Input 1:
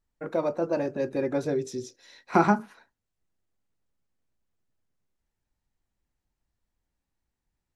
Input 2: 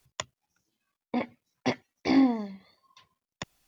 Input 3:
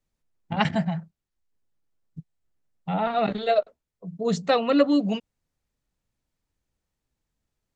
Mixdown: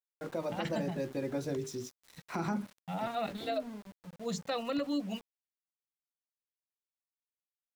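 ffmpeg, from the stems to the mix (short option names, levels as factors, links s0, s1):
-filter_complex "[0:a]acrossover=split=240|3000[s0][s1][s2];[s1]acompressor=threshold=0.00631:ratio=1.5[s3];[s0][s3][s2]amix=inputs=3:normalize=0,volume=0.794[s4];[1:a]tiltshelf=f=820:g=6.5,acrossover=split=160|3000[s5][s6][s7];[s6]acompressor=threshold=0.0178:ratio=1.5[s8];[s5][s8][s7]amix=inputs=3:normalize=0,alimiter=level_in=1.26:limit=0.0631:level=0:latency=1,volume=0.794,adelay=1350,volume=0.316[s9];[2:a]aemphasis=mode=production:type=50kf,bandreject=f=430:w=12,volume=0.282[s10];[s4][s9][s10]amix=inputs=3:normalize=0,bandreject=f=50:t=h:w=6,bandreject=f=100:t=h:w=6,bandreject=f=150:t=h:w=6,bandreject=f=200:t=h:w=6,bandreject=f=250:t=h:w=6,bandreject=f=300:t=h:w=6,bandreject=f=350:t=h:w=6,bandreject=f=400:t=h:w=6,bandreject=f=450:t=h:w=6,aeval=exprs='val(0)*gte(abs(val(0)),0.00376)':c=same,alimiter=level_in=1.06:limit=0.0631:level=0:latency=1:release=65,volume=0.944"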